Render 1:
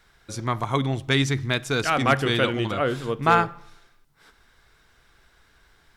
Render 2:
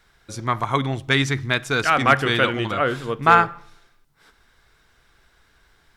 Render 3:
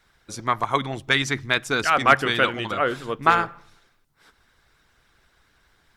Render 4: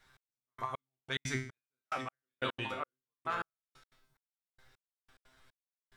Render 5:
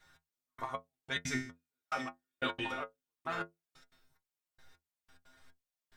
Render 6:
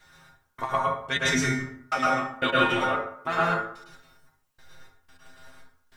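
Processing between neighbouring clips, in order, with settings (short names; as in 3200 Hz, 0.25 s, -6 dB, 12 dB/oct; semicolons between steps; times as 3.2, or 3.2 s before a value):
dynamic EQ 1500 Hz, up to +6 dB, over -35 dBFS, Q 0.75
harmonic-percussive split percussive +9 dB; gain -8 dB
reverse; compressor 6:1, threshold -28 dBFS, peak gain reduction 17 dB; reverse; resonator 130 Hz, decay 0.47 s, harmonics all, mix 90%; step gate "xx.....xx....x.x" 180 bpm -60 dB; gain +7.5 dB
metallic resonator 81 Hz, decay 0.22 s, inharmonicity 0.008; gain +8.5 dB
plate-style reverb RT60 0.67 s, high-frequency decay 0.55×, pre-delay 95 ms, DRR -4.5 dB; gain +8.5 dB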